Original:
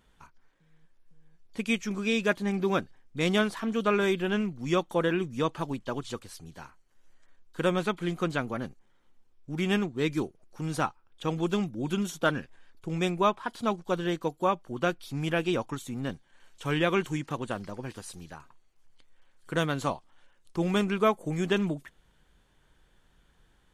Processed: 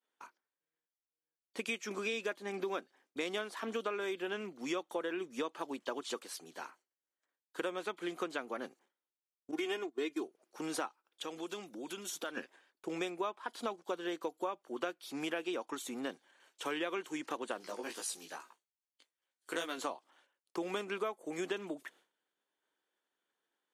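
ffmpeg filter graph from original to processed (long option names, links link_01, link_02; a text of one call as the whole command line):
ffmpeg -i in.wav -filter_complex "[0:a]asettb=1/sr,asplit=3[link_01][link_02][link_03];[link_01]atrim=end=9.514[link_04];[link_02]atrim=start=9.51:end=10.24,asetpts=PTS-STARTPTS,afade=type=in:duration=0.004:curve=qsin,afade=type=out:start_time=0.726:duration=0.004:curve=qsin,agate=range=-15dB:threshold=-36dB:ratio=16:release=100:detection=peak,aecho=1:1:2.8:0.83,atrim=end_sample=32193[link_05];[link_03]atrim=start=10.236[link_06];[link_04][link_05]acrossfade=duration=0.004:curve1=hsin:curve2=qsin[link_07];[link_07][link_06]acrossfade=duration=0.004:curve1=qsin:curve2=hsin,asettb=1/sr,asplit=3[link_08][link_09][link_10];[link_08]atrim=end=10.874[link_11];[link_09]atrim=start=10.87:end=12.37,asetpts=PTS-STARTPTS,afade=type=in:duration=0.004:curve=qsin,afade=type=out:start_time=1.496:duration=0.004:curve=qsin,agate=range=-33dB:threshold=-55dB:ratio=3:release=100:detection=peak,highshelf=frequency=2400:gain=6.5,acompressor=threshold=-39dB:ratio=4:attack=3.2:release=140:knee=1:detection=peak[link_12];[link_10]atrim=start=12.366[link_13];[link_11][link_12]acrossfade=duration=0.004:curve1=hsin:curve2=qsin[link_14];[link_14][link_13]acrossfade=duration=0.004:curve1=qsin:curve2=hsin,asettb=1/sr,asplit=3[link_15][link_16][link_17];[link_15]atrim=end=17.604[link_18];[link_16]atrim=start=17.6:end=19.78,asetpts=PTS-STARTPTS,afade=type=in:duration=0.004:curve=qsin,afade=type=out:start_time=2.176:duration=0.004:curve=qsin,highshelf=frequency=2900:gain=9.5,flanger=delay=16.5:depth=2.5:speed=2.4[link_19];[link_17]atrim=start=19.776[link_20];[link_18][link_19]acrossfade=duration=0.004:curve1=hsin:curve2=qsin[link_21];[link_21][link_20]acrossfade=duration=0.004:curve1=qsin:curve2=hsin,highpass=frequency=300:width=0.5412,highpass=frequency=300:width=1.3066,agate=range=-33dB:threshold=-58dB:ratio=3:detection=peak,acompressor=threshold=-36dB:ratio=6,volume=1.5dB" out.wav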